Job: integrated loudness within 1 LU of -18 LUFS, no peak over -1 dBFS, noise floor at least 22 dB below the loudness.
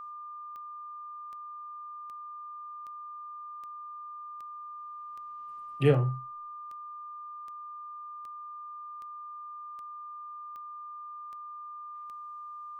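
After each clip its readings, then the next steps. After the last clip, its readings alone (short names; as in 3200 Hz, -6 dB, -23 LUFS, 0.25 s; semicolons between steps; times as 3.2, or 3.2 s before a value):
clicks 16; steady tone 1200 Hz; tone level -40 dBFS; loudness -38.0 LUFS; peak -11.0 dBFS; loudness target -18.0 LUFS
-> de-click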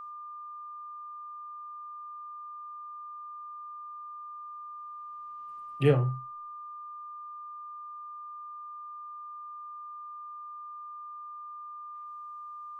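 clicks 0; steady tone 1200 Hz; tone level -40 dBFS
-> notch 1200 Hz, Q 30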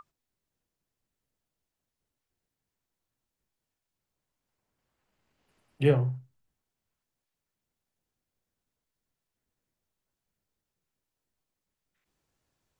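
steady tone none; loudness -27.0 LUFS; peak -10.5 dBFS; loudness target -18.0 LUFS
-> gain +9 dB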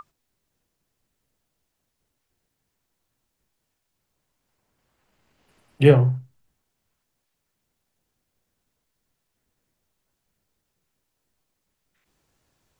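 loudness -18.0 LUFS; peak -1.5 dBFS; noise floor -79 dBFS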